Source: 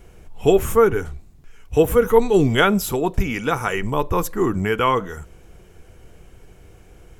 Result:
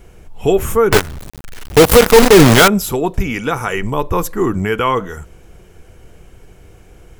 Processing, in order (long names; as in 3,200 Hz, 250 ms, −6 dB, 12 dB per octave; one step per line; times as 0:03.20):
in parallel at 0 dB: brickwall limiter −11.5 dBFS, peak gain reduction 9.5 dB
0:00.92–0:02.68: on the sum: log-companded quantiser 2 bits
level −2 dB